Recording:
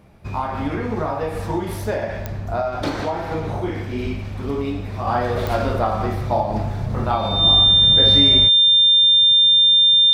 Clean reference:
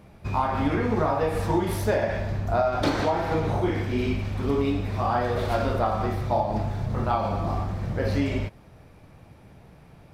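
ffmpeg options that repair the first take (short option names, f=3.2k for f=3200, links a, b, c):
-filter_complex "[0:a]adeclick=t=4,bandreject=f=3.6k:w=30,asplit=3[a][b][c];[a]afade=t=out:st=4.03:d=0.02[d];[b]highpass=f=140:w=0.5412,highpass=f=140:w=1.3066,afade=t=in:st=4.03:d=0.02,afade=t=out:st=4.15:d=0.02[e];[c]afade=t=in:st=4.15:d=0.02[f];[d][e][f]amix=inputs=3:normalize=0,asetnsamples=n=441:p=0,asendcmd='5.07 volume volume -4dB',volume=0dB"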